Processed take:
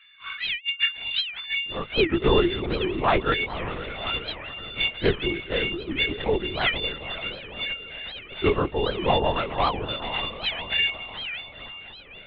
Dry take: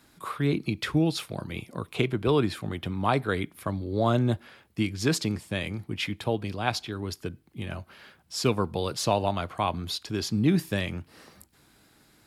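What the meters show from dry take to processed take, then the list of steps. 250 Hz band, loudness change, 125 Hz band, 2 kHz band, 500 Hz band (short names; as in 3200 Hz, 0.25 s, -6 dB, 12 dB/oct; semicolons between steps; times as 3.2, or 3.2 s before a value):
-2.5 dB, +3.0 dB, -4.5 dB, +9.0 dB, +3.5 dB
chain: frequency quantiser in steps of 4 st; in parallel at -8.5 dB: hard clip -25.5 dBFS, distortion -6 dB; on the sum: LFO high-pass square 0.3 Hz 320–2600 Hz; diffused feedback echo 0.536 s, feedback 49%, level -10 dB; LPC vocoder at 8 kHz whisper; record warp 78 rpm, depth 250 cents; gain -2 dB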